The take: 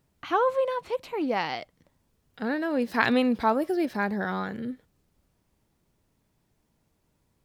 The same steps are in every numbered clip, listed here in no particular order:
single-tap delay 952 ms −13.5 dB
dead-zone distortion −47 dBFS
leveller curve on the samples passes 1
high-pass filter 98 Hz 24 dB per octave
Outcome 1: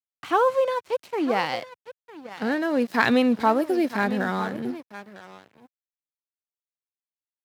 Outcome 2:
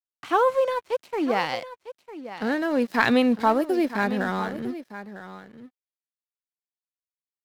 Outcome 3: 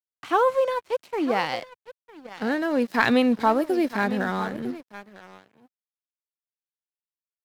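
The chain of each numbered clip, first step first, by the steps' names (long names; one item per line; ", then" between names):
single-tap delay, then leveller curve on the samples, then dead-zone distortion, then high-pass filter
dead-zone distortion, then high-pass filter, then leveller curve on the samples, then single-tap delay
single-tap delay, then dead-zone distortion, then high-pass filter, then leveller curve on the samples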